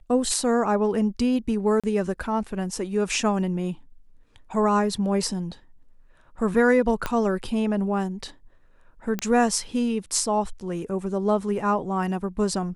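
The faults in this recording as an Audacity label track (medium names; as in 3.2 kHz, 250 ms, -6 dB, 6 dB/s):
1.800000	1.840000	dropout 36 ms
7.060000	7.060000	pop -11 dBFS
9.190000	9.190000	pop -12 dBFS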